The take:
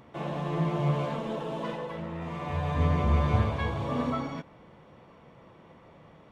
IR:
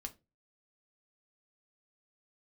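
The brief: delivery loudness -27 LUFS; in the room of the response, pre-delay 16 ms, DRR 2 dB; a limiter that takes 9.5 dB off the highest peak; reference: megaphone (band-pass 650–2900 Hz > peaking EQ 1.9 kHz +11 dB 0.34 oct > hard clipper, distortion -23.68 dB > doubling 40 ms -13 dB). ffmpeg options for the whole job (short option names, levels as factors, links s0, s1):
-filter_complex "[0:a]alimiter=limit=0.0891:level=0:latency=1,asplit=2[s0][s1];[1:a]atrim=start_sample=2205,adelay=16[s2];[s1][s2]afir=irnorm=-1:irlink=0,volume=1.19[s3];[s0][s3]amix=inputs=2:normalize=0,highpass=650,lowpass=2900,equalizer=f=1900:t=o:w=0.34:g=11,asoftclip=type=hard:threshold=0.0422,asplit=2[s4][s5];[s5]adelay=40,volume=0.224[s6];[s4][s6]amix=inputs=2:normalize=0,volume=2.66"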